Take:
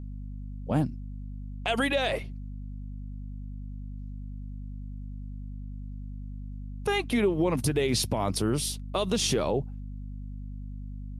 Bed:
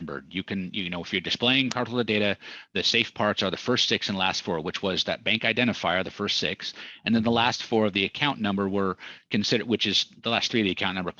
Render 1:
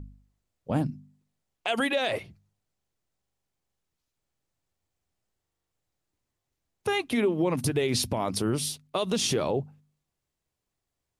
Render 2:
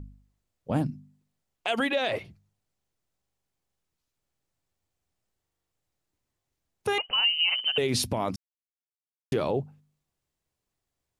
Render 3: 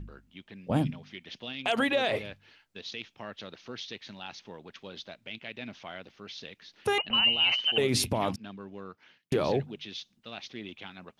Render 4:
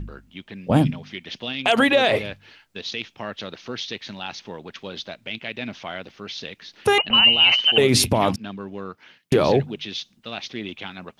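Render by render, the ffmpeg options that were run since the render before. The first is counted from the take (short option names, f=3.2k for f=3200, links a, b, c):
-af "bandreject=f=50:t=h:w=4,bandreject=f=100:t=h:w=4,bandreject=f=150:t=h:w=4,bandreject=f=200:t=h:w=4,bandreject=f=250:t=h:w=4"
-filter_complex "[0:a]asettb=1/sr,asplit=3[a][b][c];[a]atrim=end=1.754[d];[b]atrim=start=1.75:end=2.25,asetpts=PTS-STARTPTS,afade=t=in:d=0.004:c=qsin,afade=t=out:st=0.496:d=0.004:c=qsin,equalizer=f=9.8k:w=1.2:g=-9[e];[c]atrim=start=2.246[f];[d][e]acrossfade=d=0.004:c1=hsin:c2=qsin[g];[g][f]acrossfade=d=0.004:c1=qsin:c2=hsin,asettb=1/sr,asplit=3[h][i][j];[h]atrim=end=6.984[k];[i]atrim=start=6.98:end=7.78,asetpts=PTS-STARTPTS,afade=t=in:d=0.004:c=qsin,afade=t=out:st=0.796:d=0.004:c=qsin,lowpass=f=2.7k:t=q:w=0.5098,lowpass=f=2.7k:t=q:w=0.6013,lowpass=f=2.7k:t=q:w=0.9,lowpass=f=2.7k:t=q:w=2.563,afreqshift=-3200[l];[j]atrim=start=7.776[m];[k][l]acrossfade=d=0.004:c1=hsin:c2=qsin[n];[n][m]acrossfade=d=0.004:c1=qsin:c2=hsin,asplit=3[o][p][q];[o]atrim=end=8.36,asetpts=PTS-STARTPTS,afade=t=out:st=8.356:d=0.004:c=hsin[r];[p]atrim=start=8.36:end=9.32,asetpts=PTS-STARTPTS,volume=0[s];[q]atrim=start=9.32,asetpts=PTS-STARTPTS,afade=t=in:d=0.004:c=hsin[t];[r][s][t]concat=n=3:v=0:a=1"
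-filter_complex "[1:a]volume=-17.5dB[a];[0:a][a]amix=inputs=2:normalize=0"
-af "volume=9.5dB"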